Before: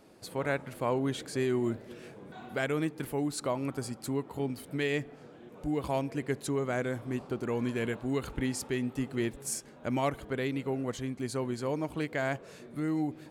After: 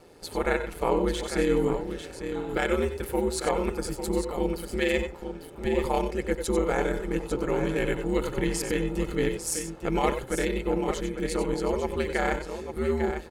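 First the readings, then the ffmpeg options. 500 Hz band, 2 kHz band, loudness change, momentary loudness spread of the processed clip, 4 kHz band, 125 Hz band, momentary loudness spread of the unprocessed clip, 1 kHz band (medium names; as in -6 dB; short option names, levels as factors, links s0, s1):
+7.0 dB, +5.0 dB, +5.0 dB, 5 LU, +5.5 dB, +1.5 dB, 7 LU, +6.5 dB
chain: -af "aeval=exprs='val(0)*sin(2*PI*83*n/s)':c=same,aecho=1:1:2.3:0.4,aecho=1:1:92|94|849:0.251|0.266|0.376,volume=2.24"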